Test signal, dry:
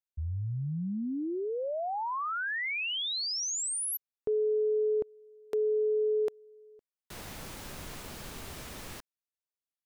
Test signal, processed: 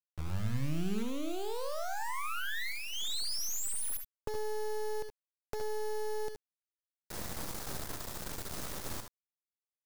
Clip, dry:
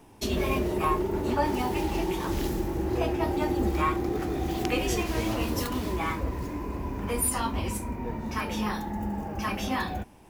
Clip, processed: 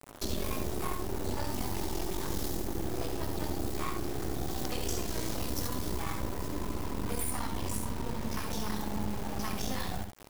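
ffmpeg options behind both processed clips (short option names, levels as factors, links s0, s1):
-filter_complex "[0:a]equalizer=f=2600:t=o:w=0.67:g=-11,acrossover=split=170|2700[s0][s1][s2];[s0]acompressor=threshold=0.0158:ratio=8[s3];[s1]acompressor=threshold=0.01:ratio=4[s4];[s2]acompressor=threshold=0.0126:ratio=4[s5];[s3][s4][s5]amix=inputs=3:normalize=0,asoftclip=type=tanh:threshold=0.1,acrusher=bits=5:dc=4:mix=0:aa=0.000001,aecho=1:1:67|77:0.376|0.316,volume=1.78"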